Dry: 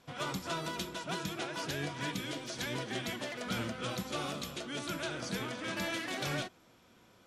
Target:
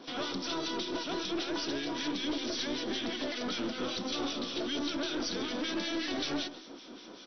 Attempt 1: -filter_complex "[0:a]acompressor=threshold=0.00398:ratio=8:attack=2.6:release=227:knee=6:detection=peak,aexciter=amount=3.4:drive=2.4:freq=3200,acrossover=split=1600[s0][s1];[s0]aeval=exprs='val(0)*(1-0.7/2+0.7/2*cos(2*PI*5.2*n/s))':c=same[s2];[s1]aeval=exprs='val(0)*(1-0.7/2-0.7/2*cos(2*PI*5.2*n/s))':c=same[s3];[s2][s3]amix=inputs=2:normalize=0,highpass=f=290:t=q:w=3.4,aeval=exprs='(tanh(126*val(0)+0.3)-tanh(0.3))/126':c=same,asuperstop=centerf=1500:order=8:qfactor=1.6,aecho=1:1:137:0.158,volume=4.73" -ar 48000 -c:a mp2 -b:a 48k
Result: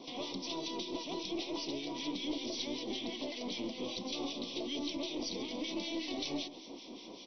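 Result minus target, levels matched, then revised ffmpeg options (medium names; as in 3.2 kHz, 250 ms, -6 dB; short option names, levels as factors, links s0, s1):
compression: peak gain reduction +5.5 dB; 2 kHz band -4.5 dB
-filter_complex "[0:a]acompressor=threshold=0.00841:ratio=8:attack=2.6:release=227:knee=6:detection=peak,aexciter=amount=3.4:drive=2.4:freq=3200,acrossover=split=1600[s0][s1];[s0]aeval=exprs='val(0)*(1-0.7/2+0.7/2*cos(2*PI*5.2*n/s))':c=same[s2];[s1]aeval=exprs='val(0)*(1-0.7/2-0.7/2*cos(2*PI*5.2*n/s))':c=same[s3];[s2][s3]amix=inputs=2:normalize=0,highpass=f=290:t=q:w=3.4,aeval=exprs='(tanh(126*val(0)+0.3)-tanh(0.3))/126':c=same,aecho=1:1:137:0.158,volume=4.73" -ar 48000 -c:a mp2 -b:a 48k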